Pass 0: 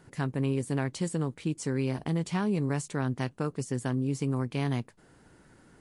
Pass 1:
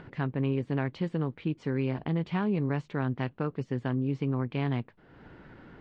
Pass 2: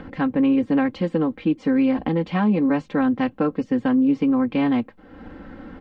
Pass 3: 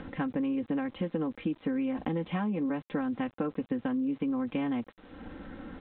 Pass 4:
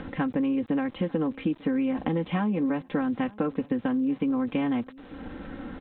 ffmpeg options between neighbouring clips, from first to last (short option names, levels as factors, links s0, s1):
-af "lowpass=f=3400:w=0.5412,lowpass=f=3400:w=1.3066,acompressor=mode=upward:threshold=0.00891:ratio=2.5"
-filter_complex "[0:a]tiltshelf=f=970:g=3,aecho=1:1:3.8:0.92,acrossover=split=200[s0][s1];[s0]alimiter=level_in=2.99:limit=0.0631:level=0:latency=1:release=442,volume=0.335[s2];[s2][s1]amix=inputs=2:normalize=0,volume=2.24"
-af "acompressor=threshold=0.0708:ratio=10,aresample=8000,aeval=exprs='val(0)*gte(abs(val(0)),0.00376)':c=same,aresample=44100,volume=0.596"
-af "aecho=1:1:896|1792:0.0708|0.0262,volume=1.68"